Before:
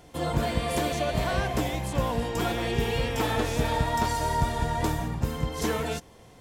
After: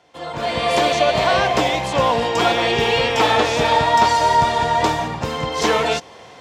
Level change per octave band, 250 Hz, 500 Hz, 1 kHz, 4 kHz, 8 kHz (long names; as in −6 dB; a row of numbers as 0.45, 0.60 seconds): +4.5, +11.0, +13.5, +13.5, +7.0 decibels